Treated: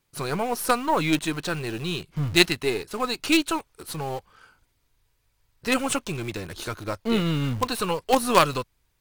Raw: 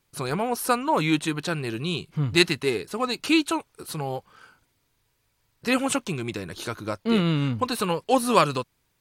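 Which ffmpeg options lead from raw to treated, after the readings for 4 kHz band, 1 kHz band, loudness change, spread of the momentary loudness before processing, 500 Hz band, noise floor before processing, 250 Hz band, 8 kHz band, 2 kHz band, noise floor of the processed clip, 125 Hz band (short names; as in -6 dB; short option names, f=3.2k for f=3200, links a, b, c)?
+1.0 dB, +0.5 dB, 0.0 dB, 12 LU, -0.5 dB, -71 dBFS, -1.5 dB, +1.5 dB, +1.0 dB, -70 dBFS, -1.0 dB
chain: -filter_complex "[0:a]asubboost=boost=3.5:cutoff=82,asplit=2[a][b];[b]acrusher=bits=3:dc=4:mix=0:aa=0.000001,volume=-5dB[c];[a][c]amix=inputs=2:normalize=0,volume=-2dB"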